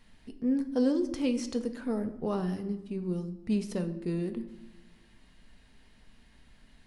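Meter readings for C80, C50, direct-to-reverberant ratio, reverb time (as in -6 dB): 14.5 dB, 12.0 dB, 7.0 dB, 1.0 s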